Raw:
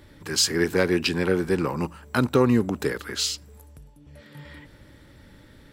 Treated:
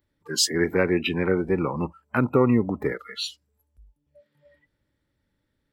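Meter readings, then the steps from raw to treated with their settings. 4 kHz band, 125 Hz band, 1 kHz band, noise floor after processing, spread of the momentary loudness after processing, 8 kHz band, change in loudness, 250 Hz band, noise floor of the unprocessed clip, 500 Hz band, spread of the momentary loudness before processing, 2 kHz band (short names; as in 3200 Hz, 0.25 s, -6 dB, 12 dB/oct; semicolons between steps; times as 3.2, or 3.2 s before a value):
-2.0 dB, 0.0 dB, 0.0 dB, -77 dBFS, 11 LU, -2.0 dB, -0.5 dB, 0.0 dB, -52 dBFS, 0.0 dB, 8 LU, -1.0 dB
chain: spectral noise reduction 25 dB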